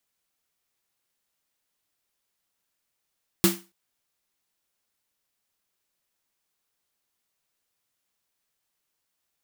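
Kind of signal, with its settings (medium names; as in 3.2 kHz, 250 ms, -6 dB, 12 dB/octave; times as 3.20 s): snare drum length 0.28 s, tones 190 Hz, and 340 Hz, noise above 620 Hz, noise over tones -2 dB, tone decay 0.27 s, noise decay 0.29 s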